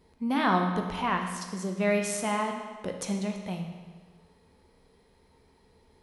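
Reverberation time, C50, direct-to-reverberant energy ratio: 1.5 s, 5.5 dB, 3.0 dB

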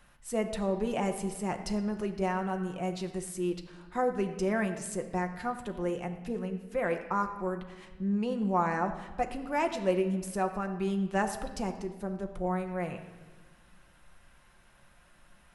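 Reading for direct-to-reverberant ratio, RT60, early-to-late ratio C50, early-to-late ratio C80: 4.5 dB, 1.3 s, 9.5 dB, 11.0 dB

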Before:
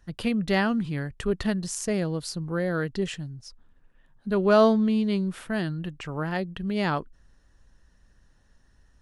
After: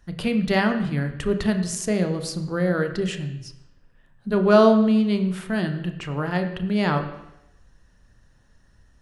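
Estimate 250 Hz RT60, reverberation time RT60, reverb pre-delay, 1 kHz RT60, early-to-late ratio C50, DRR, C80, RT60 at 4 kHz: 0.85 s, 0.85 s, 27 ms, 0.85 s, 9.5 dB, 6.0 dB, 11.0 dB, 0.90 s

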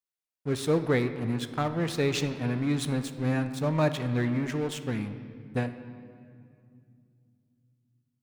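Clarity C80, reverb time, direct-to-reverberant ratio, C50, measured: 12.0 dB, 2.3 s, 9.5 dB, 11.0 dB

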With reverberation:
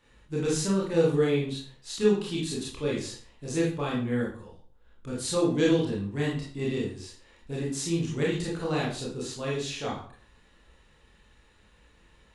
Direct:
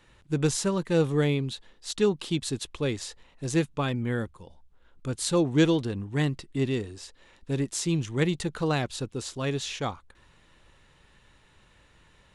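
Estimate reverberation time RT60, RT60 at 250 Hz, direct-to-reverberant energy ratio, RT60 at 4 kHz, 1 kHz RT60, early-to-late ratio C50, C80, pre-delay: 0.50 s, 0.50 s, -5.0 dB, 0.35 s, 0.45 s, 3.5 dB, 9.0 dB, 23 ms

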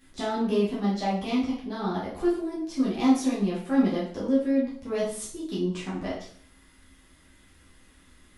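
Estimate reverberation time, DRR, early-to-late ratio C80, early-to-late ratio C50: 0.55 s, -8.0 dB, 7.5 dB, 4.0 dB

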